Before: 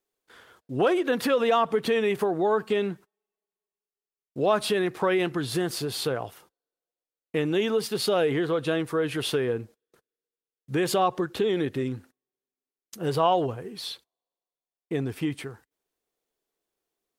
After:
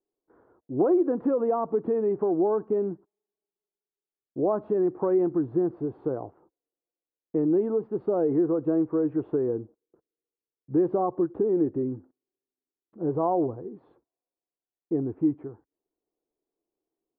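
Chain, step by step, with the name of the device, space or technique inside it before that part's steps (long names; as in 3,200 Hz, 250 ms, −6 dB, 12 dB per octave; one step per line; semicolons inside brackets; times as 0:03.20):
under water (low-pass filter 1,000 Hz 24 dB per octave; parametric band 320 Hz +10 dB 0.6 octaves)
level −4 dB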